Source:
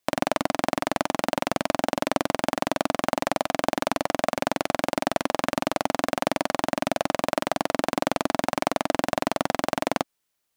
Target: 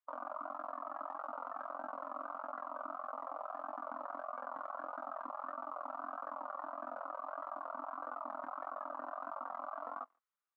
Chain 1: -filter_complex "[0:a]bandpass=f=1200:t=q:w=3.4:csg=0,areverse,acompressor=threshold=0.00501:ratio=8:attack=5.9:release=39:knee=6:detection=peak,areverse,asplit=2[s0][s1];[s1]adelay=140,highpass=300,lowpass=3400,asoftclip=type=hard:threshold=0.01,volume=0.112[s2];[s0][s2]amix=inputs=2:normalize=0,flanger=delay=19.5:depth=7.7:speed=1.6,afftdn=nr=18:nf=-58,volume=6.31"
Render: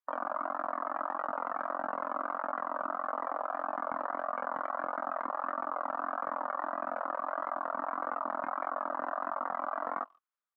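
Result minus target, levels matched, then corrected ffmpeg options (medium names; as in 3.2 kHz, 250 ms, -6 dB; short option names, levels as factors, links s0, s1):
compression: peak gain reduction -8.5 dB
-filter_complex "[0:a]bandpass=f=1200:t=q:w=3.4:csg=0,areverse,acompressor=threshold=0.00168:ratio=8:attack=5.9:release=39:knee=6:detection=peak,areverse,asplit=2[s0][s1];[s1]adelay=140,highpass=300,lowpass=3400,asoftclip=type=hard:threshold=0.01,volume=0.112[s2];[s0][s2]amix=inputs=2:normalize=0,flanger=delay=19.5:depth=7.7:speed=1.6,afftdn=nr=18:nf=-58,volume=6.31"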